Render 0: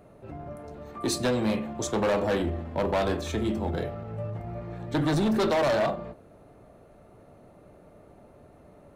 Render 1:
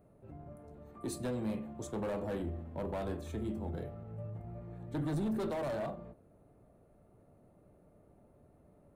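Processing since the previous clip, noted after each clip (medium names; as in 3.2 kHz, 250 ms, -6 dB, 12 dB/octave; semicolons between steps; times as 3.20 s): FFT filter 160 Hz 0 dB, 5.6 kHz -12 dB, 9 kHz -2 dB; trim -8 dB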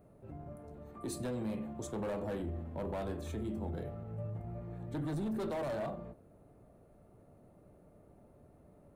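peak limiter -34 dBFS, peak gain reduction 5.5 dB; trim +2.5 dB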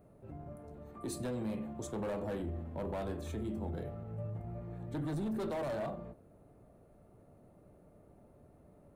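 no audible change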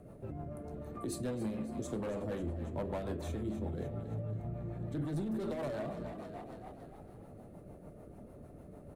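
on a send: frequency-shifting echo 276 ms, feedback 53%, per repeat +32 Hz, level -12 dB; on the sum: compression 2:1, threshold -50 dBFS, peak gain reduction 9.5 dB; rotary cabinet horn 6.7 Hz; trim +10 dB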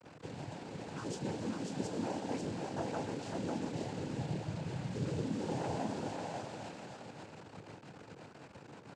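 bit crusher 8-bit; noise-vocoded speech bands 8; delay 543 ms -3.5 dB; trim -1 dB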